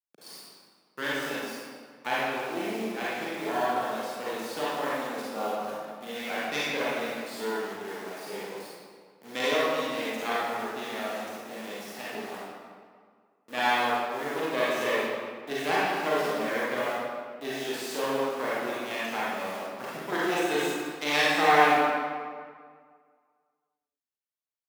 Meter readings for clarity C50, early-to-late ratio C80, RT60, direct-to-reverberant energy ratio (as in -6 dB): -5.0 dB, -1.0 dB, 1.9 s, -8.5 dB